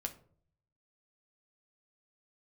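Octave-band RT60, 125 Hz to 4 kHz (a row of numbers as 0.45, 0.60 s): 1.0, 0.65, 0.60, 0.45, 0.35, 0.25 s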